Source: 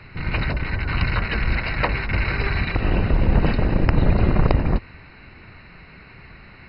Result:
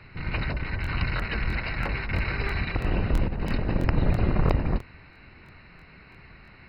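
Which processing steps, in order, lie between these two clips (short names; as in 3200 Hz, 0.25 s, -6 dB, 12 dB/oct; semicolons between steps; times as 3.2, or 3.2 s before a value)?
3.28–3.74 negative-ratio compressor -21 dBFS, ratio -1; crackling interface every 0.33 s, samples 1024, repeat, from 0.82; gain -5.5 dB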